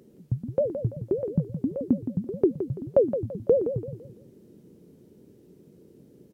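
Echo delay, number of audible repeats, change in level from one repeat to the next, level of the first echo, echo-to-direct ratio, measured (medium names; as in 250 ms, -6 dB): 168 ms, 3, -9.5 dB, -9.5 dB, -9.0 dB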